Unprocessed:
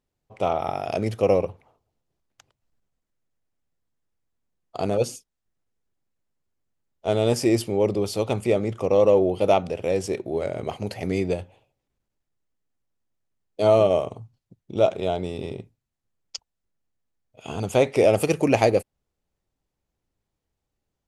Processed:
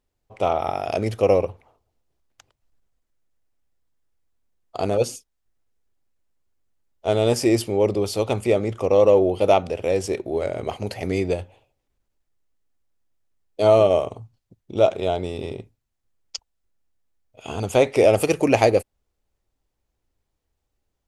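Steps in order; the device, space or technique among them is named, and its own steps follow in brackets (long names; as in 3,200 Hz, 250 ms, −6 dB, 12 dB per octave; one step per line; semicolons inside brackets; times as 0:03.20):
low shelf boost with a cut just above (low-shelf EQ 70 Hz +5.5 dB; parametric band 160 Hz −6 dB 1 octave)
level +2.5 dB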